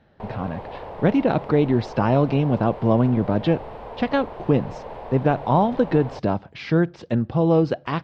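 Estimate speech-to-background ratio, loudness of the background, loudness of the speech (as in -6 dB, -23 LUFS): 15.0 dB, -37.0 LUFS, -22.0 LUFS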